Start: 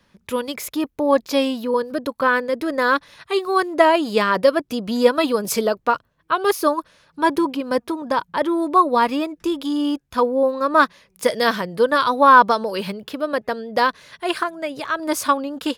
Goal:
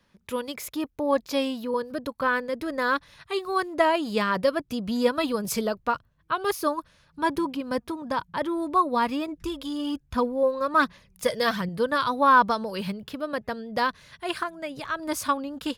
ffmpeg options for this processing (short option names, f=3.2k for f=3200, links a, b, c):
-filter_complex "[0:a]asubboost=boost=3.5:cutoff=180,asettb=1/sr,asplit=3[a][b][c];[a]atrim=end=9.284[d];[b]atrim=start=9.28:end=11.69,asetpts=PTS-STARTPTS,afade=t=in:d=0.004:c=qsin,afade=t=out:st=2.406:d=0.004:c=qsin,aphaser=in_gain=1:out_gain=1:delay=2:decay=0.45:speed=1.2:type=sinusoidal[e];[c]atrim=start=11.686[f];[d][e]acrossfade=d=0.004:c1=hsin:c2=qsin[g];[g][f]acrossfade=d=0.004:c1=qsin:c2=hsin,volume=-6dB"